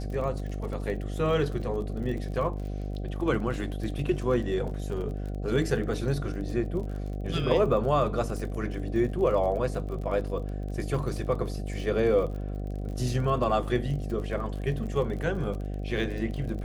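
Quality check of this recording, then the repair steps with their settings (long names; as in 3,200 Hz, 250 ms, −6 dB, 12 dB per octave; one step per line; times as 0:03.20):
mains buzz 50 Hz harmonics 15 −33 dBFS
surface crackle 40 per second −36 dBFS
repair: click removal
hum removal 50 Hz, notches 15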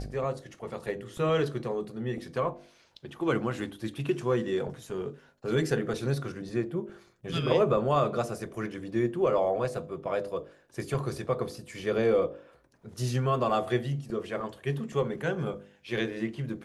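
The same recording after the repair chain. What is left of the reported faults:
none of them is left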